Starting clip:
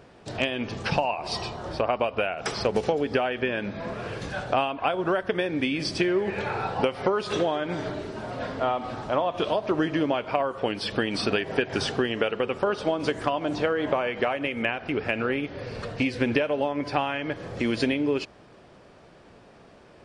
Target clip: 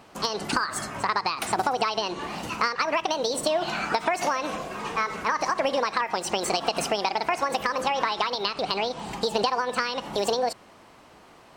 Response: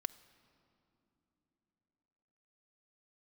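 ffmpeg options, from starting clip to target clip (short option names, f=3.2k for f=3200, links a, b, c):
-af "asetrate=76440,aresample=44100"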